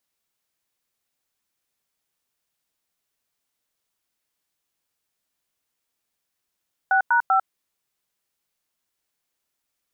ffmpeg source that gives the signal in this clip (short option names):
-f lavfi -i "aevalsrc='0.126*clip(min(mod(t,0.195),0.098-mod(t,0.195))/0.002,0,1)*(eq(floor(t/0.195),0)*(sin(2*PI*770*mod(t,0.195))+sin(2*PI*1477*mod(t,0.195)))+eq(floor(t/0.195),1)*(sin(2*PI*941*mod(t,0.195))+sin(2*PI*1477*mod(t,0.195)))+eq(floor(t/0.195),2)*(sin(2*PI*770*mod(t,0.195))+sin(2*PI*1336*mod(t,0.195))))':d=0.585:s=44100"